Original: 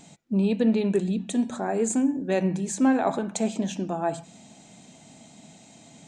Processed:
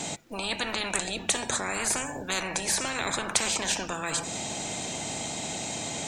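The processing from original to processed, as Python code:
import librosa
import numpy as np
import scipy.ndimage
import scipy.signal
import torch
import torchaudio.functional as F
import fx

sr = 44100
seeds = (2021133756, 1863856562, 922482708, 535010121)

y = fx.dynamic_eq(x, sr, hz=3200.0, q=1.6, threshold_db=-54.0, ratio=4.0, max_db=-5)
y = fx.spectral_comp(y, sr, ratio=10.0)
y = F.gain(torch.from_numpy(y), 2.5).numpy()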